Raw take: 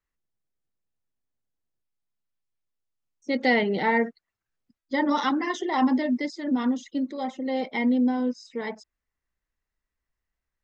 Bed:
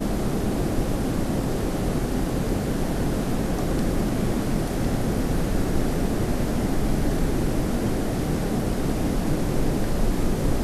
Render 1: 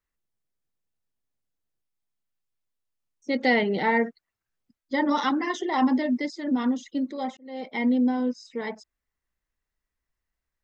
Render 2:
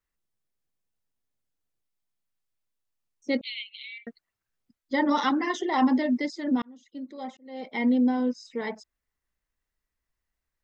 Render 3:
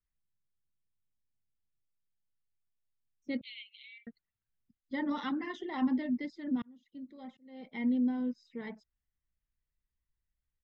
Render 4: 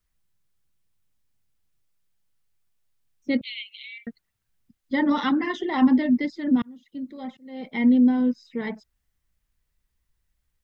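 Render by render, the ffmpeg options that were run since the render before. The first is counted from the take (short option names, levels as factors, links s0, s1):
-filter_complex "[0:a]asplit=2[s0][s1];[s0]atrim=end=7.37,asetpts=PTS-STARTPTS,afade=t=out:st=7.366:d=0.004:c=hsin[s2];[s1]atrim=start=7.37,asetpts=PTS-STARTPTS,afade=t=in:d=0.49[s3];[s2][s3]concat=n=2:v=0:a=1"
-filter_complex "[0:a]asettb=1/sr,asplit=3[s0][s1][s2];[s0]atrim=end=3.414[s3];[s1]atrim=start=3.41:end=4.07,asetpts=PTS-STARTPTS,afade=t=in:d=0.004:c=qsin,afade=t=out:st=0.656:d=0.004:c=qsin,asuperpass=centerf=3100:order=20:qfactor=1.5[s4];[s2]atrim=start=4.066[s5];[s3][s4]acrossfade=d=0.004:c1=hsin:c2=qsin[s6];[s6][s5]acrossfade=d=0.004:c1=qsin:c2=hsin,asplit=2[s7][s8];[s7]atrim=end=6.62,asetpts=PTS-STARTPTS,afade=t=out:st=6.616:d=0.004:c=hsin[s9];[s8]atrim=start=6.62,asetpts=PTS-STARTPTS,afade=t=in:d=1.28[s10];[s9][s10]concat=n=2:v=0:a=1"
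-af "firequalizer=gain_entry='entry(130,0);entry(250,-7);entry(360,-11);entry(540,-14);entry(800,-15);entry(1600,-11);entry(3400,-11);entry(6200,-23)':delay=0.05:min_phase=1"
-af "volume=3.98"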